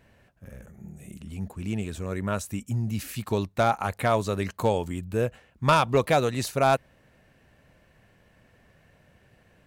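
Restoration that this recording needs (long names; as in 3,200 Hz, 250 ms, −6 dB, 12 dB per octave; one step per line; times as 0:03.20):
clipped peaks rebuilt −12.5 dBFS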